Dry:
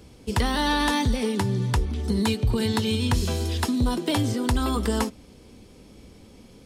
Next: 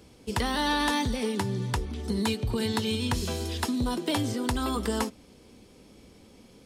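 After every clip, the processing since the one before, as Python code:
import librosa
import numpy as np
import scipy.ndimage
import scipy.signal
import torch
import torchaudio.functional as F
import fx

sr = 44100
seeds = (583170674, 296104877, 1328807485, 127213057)

y = fx.low_shelf(x, sr, hz=130.0, db=-7.0)
y = y * 10.0 ** (-2.5 / 20.0)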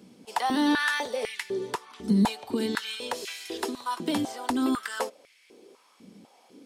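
y = fx.filter_held_highpass(x, sr, hz=4.0, low_hz=200.0, high_hz=2100.0)
y = y * 10.0 ** (-3.0 / 20.0)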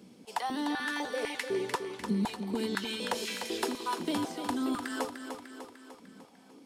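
y = fx.rider(x, sr, range_db=10, speed_s=0.5)
y = fx.echo_feedback(y, sr, ms=299, feedback_pct=56, wet_db=-8.0)
y = y * 10.0 ** (-5.5 / 20.0)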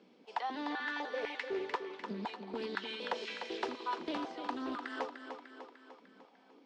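y = fx.bandpass_edges(x, sr, low_hz=360.0, high_hz=4600.0)
y = fx.air_absorb(y, sr, metres=97.0)
y = fx.doppler_dist(y, sr, depth_ms=0.19)
y = y * 10.0 ** (-2.5 / 20.0)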